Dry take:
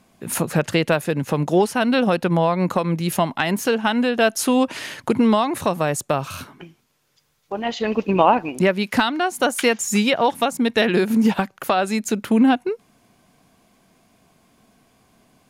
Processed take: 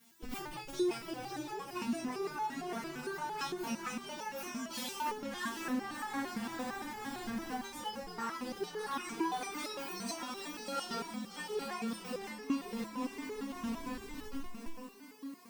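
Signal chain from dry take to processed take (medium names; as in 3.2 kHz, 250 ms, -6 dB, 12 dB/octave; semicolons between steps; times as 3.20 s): frequency axis rescaled in octaves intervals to 129%; word length cut 10-bit, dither triangular; high-pass 170 Hz 6 dB/octave; 4.70–5.49 s: waveshaping leveller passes 3; hum notches 50/100/150/200/250/300/350/400 Hz; on a send: echo that smears into a reverb 638 ms, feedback 49%, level -4 dB; on the sum: reverberation RT60 0.40 s, pre-delay 3 ms, DRR 14 dB; in parallel at -8.5 dB: Schmitt trigger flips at -31 dBFS; on the sum: compression 5:1, threshold -31 dBFS, peak gain reduction 17.5 dB; peaking EQ 600 Hz -12.5 dB 0.28 oct; resonator arpeggio 8.8 Hz 230–430 Hz; trim +8.5 dB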